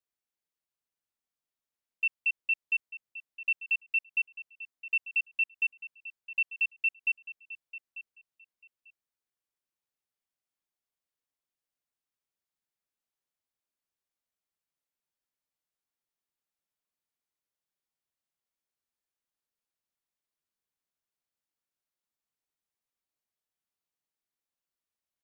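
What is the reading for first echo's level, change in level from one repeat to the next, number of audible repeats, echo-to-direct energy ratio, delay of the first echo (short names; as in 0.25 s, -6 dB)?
-15.0 dB, -15.0 dB, 2, -15.0 dB, 0.893 s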